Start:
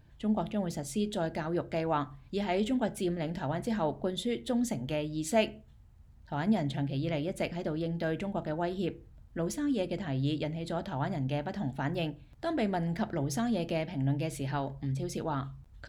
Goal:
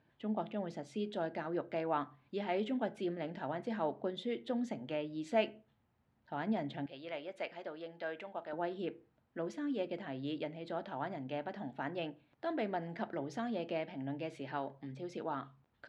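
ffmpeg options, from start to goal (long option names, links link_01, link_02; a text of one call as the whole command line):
ffmpeg -i in.wav -af "asetnsamples=nb_out_samples=441:pad=0,asendcmd='6.86 highpass f 590;8.53 highpass f 280',highpass=240,lowpass=3100,volume=-4dB" out.wav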